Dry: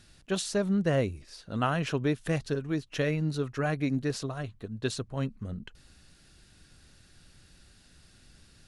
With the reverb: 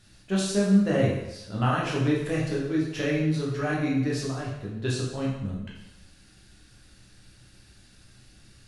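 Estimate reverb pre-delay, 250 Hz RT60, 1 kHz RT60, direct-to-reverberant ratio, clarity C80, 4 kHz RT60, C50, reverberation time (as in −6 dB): 5 ms, 0.85 s, 0.90 s, −5.0 dB, 5.0 dB, 0.85 s, 2.0 dB, 0.95 s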